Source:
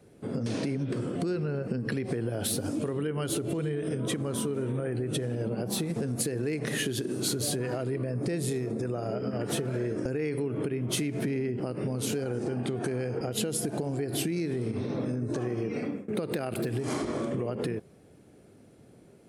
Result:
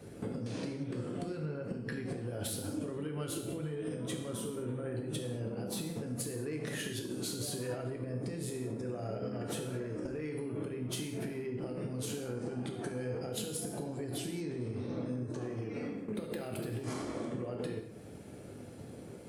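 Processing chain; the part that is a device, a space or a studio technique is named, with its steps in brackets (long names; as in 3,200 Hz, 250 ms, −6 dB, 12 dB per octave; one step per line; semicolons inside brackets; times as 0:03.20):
drum-bus smash (transient designer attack +7 dB, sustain +1 dB; downward compressor 8 to 1, threshold −41 dBFS, peak gain reduction 20.5 dB; soft clipping −32.5 dBFS, distortion −24 dB)
0:14.18–0:15.10: Chebyshev low-pass filter 9,000 Hz, order 5
reverb whose tail is shaped and stops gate 250 ms falling, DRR 2 dB
level +4.5 dB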